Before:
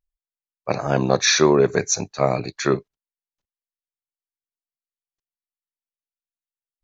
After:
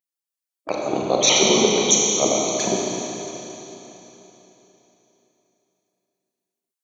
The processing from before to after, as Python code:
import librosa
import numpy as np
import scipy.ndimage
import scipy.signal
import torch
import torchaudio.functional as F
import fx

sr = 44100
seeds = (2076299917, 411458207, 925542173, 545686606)

y = fx.pitch_trill(x, sr, semitones=-11.0, every_ms=68)
y = scipy.signal.sosfilt(scipy.signal.butter(2, 330.0, 'highpass', fs=sr, output='sos'), y)
y = fx.high_shelf(y, sr, hz=6400.0, db=12.0)
y = fx.env_flanger(y, sr, rest_ms=6.0, full_db=-25.0)
y = fx.rev_schroeder(y, sr, rt60_s=3.6, comb_ms=29, drr_db=-2.5)